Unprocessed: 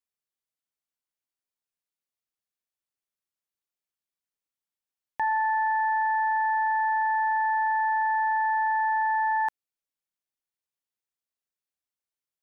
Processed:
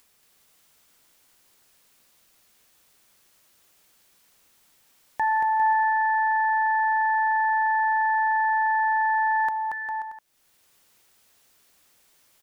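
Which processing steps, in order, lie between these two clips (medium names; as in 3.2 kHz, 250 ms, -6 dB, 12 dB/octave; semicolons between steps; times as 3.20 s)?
upward compressor, threshold -45 dBFS; bouncing-ball echo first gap 230 ms, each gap 0.75×, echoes 5; trim +2.5 dB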